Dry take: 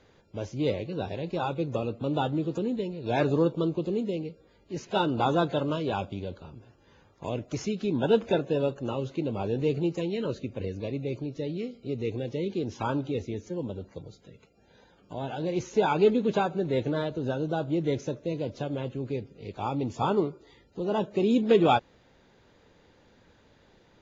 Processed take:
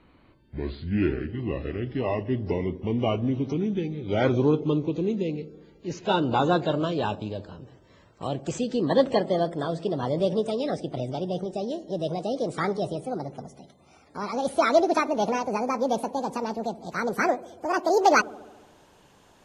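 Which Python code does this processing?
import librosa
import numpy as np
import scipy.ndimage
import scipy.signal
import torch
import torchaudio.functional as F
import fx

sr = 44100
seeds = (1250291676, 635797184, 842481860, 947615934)

y = fx.speed_glide(x, sr, from_pct=62, to_pct=185)
y = fx.echo_wet_lowpass(y, sr, ms=71, feedback_pct=69, hz=540.0, wet_db=-15.5)
y = F.gain(torch.from_numpy(y), 2.5).numpy()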